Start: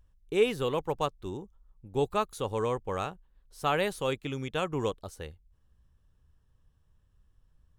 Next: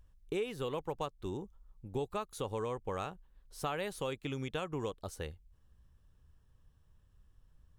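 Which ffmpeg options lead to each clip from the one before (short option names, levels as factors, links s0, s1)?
-af "acompressor=threshold=0.0178:ratio=5,volume=1.12"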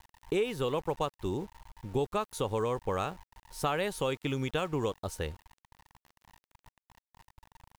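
-af "aeval=exprs='val(0)+0.000562*sin(2*PI*920*n/s)':c=same,aeval=exprs='val(0)*gte(abs(val(0)),0.00178)':c=same,volume=2"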